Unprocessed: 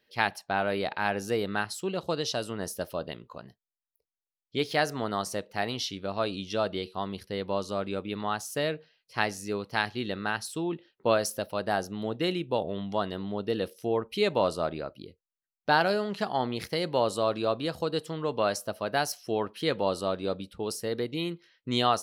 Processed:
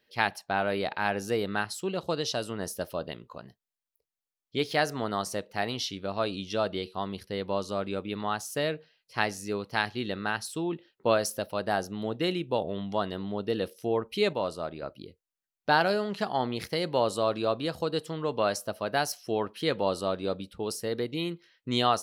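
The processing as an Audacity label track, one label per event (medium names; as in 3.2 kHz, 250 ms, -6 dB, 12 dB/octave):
14.330000	14.820000	gain -5 dB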